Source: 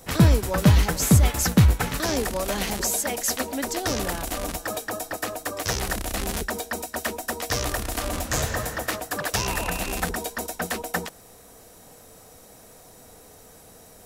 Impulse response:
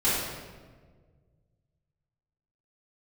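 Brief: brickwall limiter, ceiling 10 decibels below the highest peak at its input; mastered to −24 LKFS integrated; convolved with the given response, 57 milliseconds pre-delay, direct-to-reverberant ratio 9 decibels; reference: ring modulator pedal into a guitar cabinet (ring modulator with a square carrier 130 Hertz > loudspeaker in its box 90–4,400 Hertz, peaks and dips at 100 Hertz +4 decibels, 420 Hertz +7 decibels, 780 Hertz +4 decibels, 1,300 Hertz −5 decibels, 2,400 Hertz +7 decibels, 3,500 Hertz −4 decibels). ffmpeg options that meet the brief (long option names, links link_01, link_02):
-filter_complex "[0:a]alimiter=limit=-14.5dB:level=0:latency=1,asplit=2[link_01][link_02];[1:a]atrim=start_sample=2205,adelay=57[link_03];[link_02][link_03]afir=irnorm=-1:irlink=0,volume=-22.5dB[link_04];[link_01][link_04]amix=inputs=2:normalize=0,aeval=exprs='val(0)*sgn(sin(2*PI*130*n/s))':channel_layout=same,highpass=90,equalizer=frequency=100:width_type=q:width=4:gain=4,equalizer=frequency=420:width_type=q:width=4:gain=7,equalizer=frequency=780:width_type=q:width=4:gain=4,equalizer=frequency=1300:width_type=q:width=4:gain=-5,equalizer=frequency=2400:width_type=q:width=4:gain=7,equalizer=frequency=3500:width_type=q:width=4:gain=-4,lowpass=frequency=4400:width=0.5412,lowpass=frequency=4400:width=1.3066,volume=2.5dB"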